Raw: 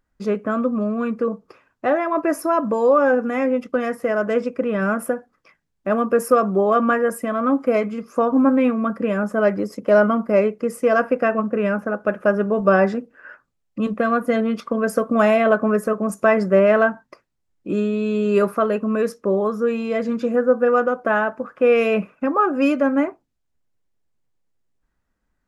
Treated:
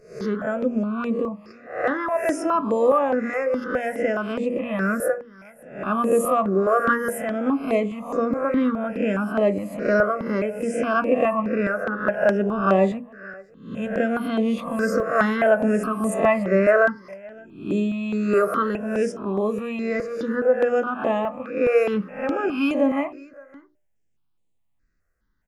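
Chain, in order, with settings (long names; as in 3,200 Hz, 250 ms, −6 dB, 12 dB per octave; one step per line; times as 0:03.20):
peak hold with a rise ahead of every peak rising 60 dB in 0.52 s
mains-hum notches 60/120/180/240/300/360/420/480/540/600 Hz
on a send: single-tap delay 566 ms −23.5 dB
on the sum: step-sequenced phaser 4.8 Hz 910–5,300 Hz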